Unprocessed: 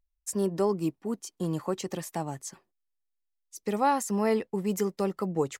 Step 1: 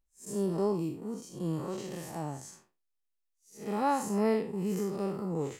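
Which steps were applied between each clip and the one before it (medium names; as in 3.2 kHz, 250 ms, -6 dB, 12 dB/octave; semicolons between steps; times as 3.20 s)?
spectral blur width 145 ms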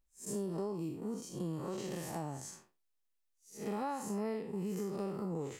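compression 5:1, threshold -36 dBFS, peak gain reduction 12 dB; trim +1 dB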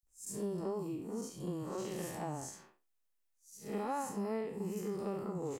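three bands offset in time highs, lows, mids 30/70 ms, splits 200/4100 Hz; trim +1 dB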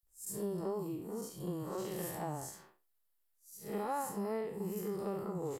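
graphic EQ with 31 bands 250 Hz -8 dB, 2.5 kHz -5 dB, 6.3 kHz -6 dB, 12.5 kHz +10 dB; trim +1 dB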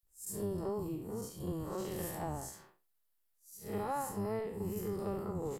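octave divider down 1 oct, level -5 dB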